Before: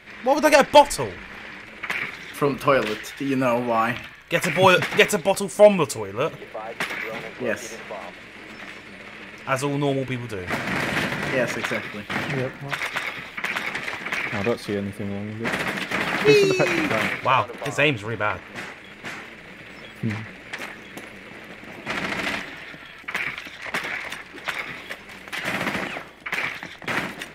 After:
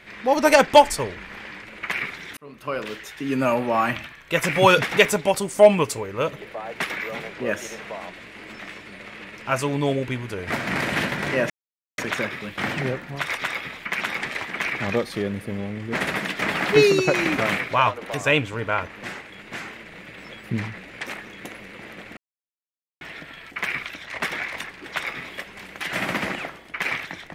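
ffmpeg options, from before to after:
-filter_complex "[0:a]asplit=5[s0][s1][s2][s3][s4];[s0]atrim=end=2.37,asetpts=PTS-STARTPTS,afade=t=out:st=2.366:d=0.004:c=hsin[s5];[s1]atrim=start=2.37:end=11.5,asetpts=PTS-STARTPTS,afade=t=in:d=1.09,afade=t=out:st=9.126:d=0.004:c=hsin,apad=pad_dur=0.48[s6];[s2]atrim=start=11.5:end=21.69,asetpts=PTS-STARTPTS,afade=t=in:d=0.004:c=hsin,afade=t=out:st=10.186:d=0.004:c=hsin[s7];[s3]atrim=start=21.69:end=22.53,asetpts=PTS-STARTPTS,volume=0[s8];[s4]atrim=start=22.53,asetpts=PTS-STARTPTS,afade=t=in:d=0.004:c=hsin[s9];[s5][s6][s7][s8][s9]concat=n=5:v=0:a=1"

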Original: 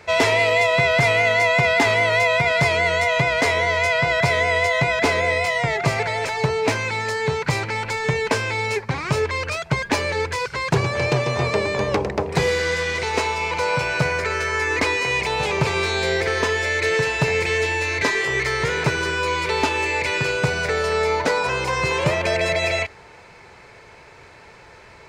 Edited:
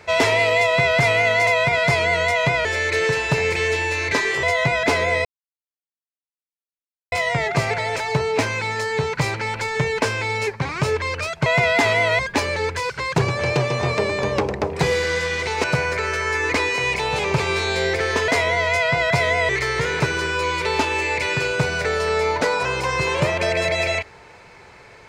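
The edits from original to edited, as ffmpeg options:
-filter_complex "[0:a]asplit=10[s0][s1][s2][s3][s4][s5][s6][s7][s8][s9];[s0]atrim=end=1.472[s10];[s1]atrim=start=2.198:end=3.382[s11];[s2]atrim=start=16.548:end=18.332[s12];[s3]atrim=start=4.588:end=5.41,asetpts=PTS-STARTPTS,afade=t=out:st=0.818:d=0.004:c=hsin,apad=pad_dur=1.87[s13];[s4]atrim=start=5.41:end=9.752,asetpts=PTS-STARTPTS,afade=t=in:d=0.004:c=hsin[s14];[s5]atrim=start=1.468:end=2.202[s15];[s6]atrim=start=9.748:end=13.202[s16];[s7]atrim=start=13.908:end=16.552[s17];[s8]atrim=start=3.378:end=4.592[s18];[s9]atrim=start=18.328[s19];[s10][s11]acrossfade=d=0.004:c1=hsin:c2=hsin[s20];[s20][s12]acrossfade=d=0.004:c1=hsin:c2=hsin[s21];[s13][s14]concat=n=2:v=0:a=1[s22];[s21][s22]acrossfade=d=0.004:c1=hsin:c2=hsin[s23];[s23][s15]acrossfade=d=0.004:c1=hsin:c2=hsin[s24];[s24][s16]acrossfade=d=0.004:c1=hsin:c2=hsin[s25];[s25][s17]acrossfade=d=0.004:c1=hsin:c2=hsin[s26];[s26][s18]acrossfade=d=0.004:c1=hsin:c2=hsin[s27];[s27][s19]acrossfade=d=0.004:c1=hsin:c2=hsin"

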